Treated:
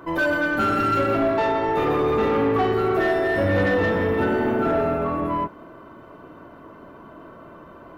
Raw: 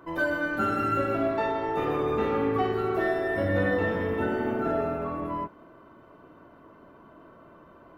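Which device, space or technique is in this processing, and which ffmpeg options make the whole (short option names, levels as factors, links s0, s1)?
saturation between pre-emphasis and de-emphasis: -af "highshelf=f=2200:g=8.5,asoftclip=type=tanh:threshold=0.075,highshelf=f=2200:g=-8.5,volume=2.66"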